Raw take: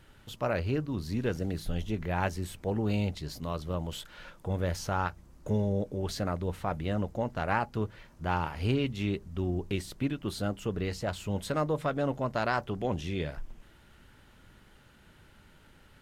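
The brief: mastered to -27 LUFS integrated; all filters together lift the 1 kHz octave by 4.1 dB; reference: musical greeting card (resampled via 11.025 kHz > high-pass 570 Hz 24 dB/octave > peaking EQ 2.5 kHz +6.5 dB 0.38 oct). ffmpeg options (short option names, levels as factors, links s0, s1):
-af "equalizer=f=1000:t=o:g=5.5,aresample=11025,aresample=44100,highpass=f=570:w=0.5412,highpass=f=570:w=1.3066,equalizer=f=2500:t=o:w=0.38:g=6.5,volume=2.37"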